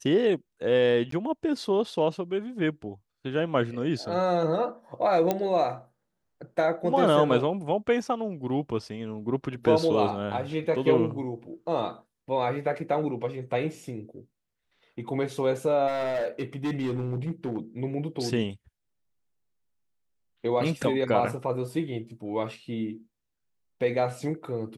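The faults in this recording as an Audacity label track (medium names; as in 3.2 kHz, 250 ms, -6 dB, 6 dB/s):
1.110000	1.120000	dropout
5.310000	5.310000	pop -11 dBFS
15.870000	17.580000	clipped -24.5 dBFS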